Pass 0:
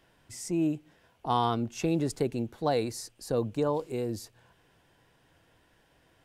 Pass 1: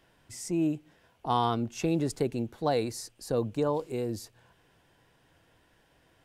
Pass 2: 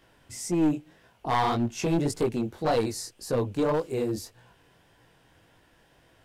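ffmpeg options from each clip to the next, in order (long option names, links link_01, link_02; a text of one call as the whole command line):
ffmpeg -i in.wav -af anull out.wav
ffmpeg -i in.wav -af "flanger=delay=17:depth=6.8:speed=1.8,aeval=exprs='clip(val(0),-1,0.0398)':channel_layout=same,volume=7dB" out.wav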